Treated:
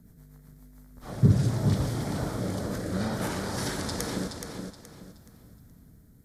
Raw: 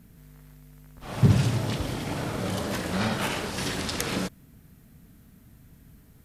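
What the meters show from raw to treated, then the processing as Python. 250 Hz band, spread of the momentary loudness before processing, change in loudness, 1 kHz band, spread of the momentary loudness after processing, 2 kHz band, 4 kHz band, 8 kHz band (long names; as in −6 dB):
−0.5 dB, 10 LU, −1.5 dB, −4.0 dB, 19 LU, −6.0 dB, −6.0 dB, −2.0 dB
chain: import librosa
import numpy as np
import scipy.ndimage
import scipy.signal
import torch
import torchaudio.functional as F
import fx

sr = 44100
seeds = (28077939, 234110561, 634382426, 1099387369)

p1 = fx.peak_eq(x, sr, hz=2700.0, db=-15.0, octaves=0.58)
p2 = fx.rotary_switch(p1, sr, hz=8.0, then_hz=0.6, switch_at_s=0.39)
y = p2 + fx.echo_feedback(p2, sr, ms=423, feedback_pct=30, wet_db=-6.0, dry=0)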